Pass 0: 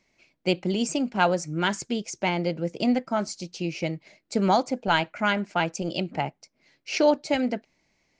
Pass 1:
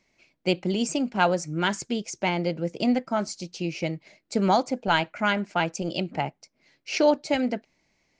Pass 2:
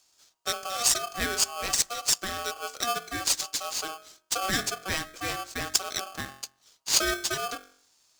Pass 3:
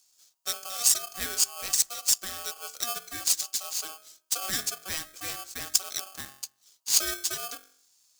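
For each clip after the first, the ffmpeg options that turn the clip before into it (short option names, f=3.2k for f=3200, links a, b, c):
-af anull
-af "highshelf=f=3.9k:t=q:w=3:g=14,bandreject=f=46:t=h:w=4,bandreject=f=92:t=h:w=4,bandreject=f=138:t=h:w=4,bandreject=f=184:t=h:w=4,bandreject=f=230:t=h:w=4,bandreject=f=276:t=h:w=4,bandreject=f=322:t=h:w=4,bandreject=f=368:t=h:w=4,bandreject=f=414:t=h:w=4,bandreject=f=460:t=h:w=4,bandreject=f=506:t=h:w=4,bandreject=f=552:t=h:w=4,bandreject=f=598:t=h:w=4,bandreject=f=644:t=h:w=4,bandreject=f=690:t=h:w=4,bandreject=f=736:t=h:w=4,bandreject=f=782:t=h:w=4,bandreject=f=828:t=h:w=4,bandreject=f=874:t=h:w=4,bandreject=f=920:t=h:w=4,bandreject=f=966:t=h:w=4,bandreject=f=1.012k:t=h:w=4,bandreject=f=1.058k:t=h:w=4,bandreject=f=1.104k:t=h:w=4,bandreject=f=1.15k:t=h:w=4,bandreject=f=1.196k:t=h:w=4,bandreject=f=1.242k:t=h:w=4,aeval=exprs='val(0)*sgn(sin(2*PI*950*n/s))':c=same,volume=-7dB"
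-af "crystalizer=i=3:c=0,volume=-9.5dB"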